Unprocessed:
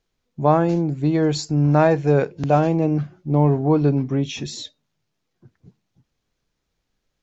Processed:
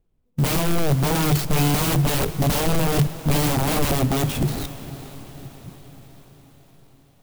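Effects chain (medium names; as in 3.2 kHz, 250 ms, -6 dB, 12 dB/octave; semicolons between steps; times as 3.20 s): rattle on loud lows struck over -18 dBFS, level -16 dBFS; level-controlled noise filter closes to 2.7 kHz, open at -16 dBFS; integer overflow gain 18.5 dB; peaking EQ 1.7 kHz -9 dB 1.3 oct; in parallel at -6.5 dB: Schmitt trigger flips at -35 dBFS; on the sum: bass shelf 260 Hz +9.5 dB; on a send: echo that smears into a reverb 456 ms, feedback 59%, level -15 dB; on the sum: sampling jitter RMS 0.046 ms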